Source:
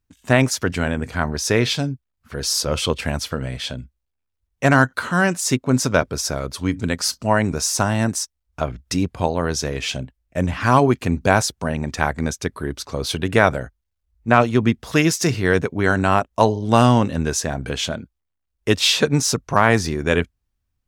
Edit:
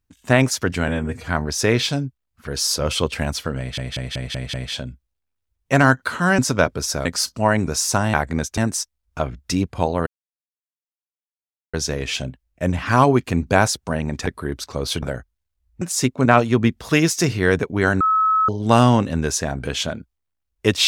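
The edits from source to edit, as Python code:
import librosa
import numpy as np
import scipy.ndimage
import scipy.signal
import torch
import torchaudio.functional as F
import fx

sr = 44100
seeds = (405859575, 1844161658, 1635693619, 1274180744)

y = fx.edit(x, sr, fx.stretch_span(start_s=0.88, length_s=0.27, factor=1.5),
    fx.stutter(start_s=3.45, slice_s=0.19, count=6),
    fx.move(start_s=5.3, length_s=0.44, to_s=14.28),
    fx.cut(start_s=6.41, length_s=0.5),
    fx.insert_silence(at_s=9.48, length_s=1.67),
    fx.move(start_s=12.01, length_s=0.44, to_s=7.99),
    fx.cut(start_s=13.21, length_s=0.28),
    fx.bleep(start_s=16.03, length_s=0.48, hz=1290.0, db=-14.0), tone=tone)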